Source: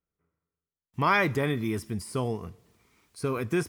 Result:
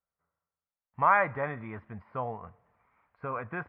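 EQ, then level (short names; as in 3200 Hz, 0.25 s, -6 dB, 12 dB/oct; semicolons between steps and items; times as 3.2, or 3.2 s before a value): inverse Chebyshev low-pass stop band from 6000 Hz, stop band 60 dB; resonant low shelf 490 Hz -9 dB, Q 3; bell 660 Hz -6.5 dB 0.24 oct; 0.0 dB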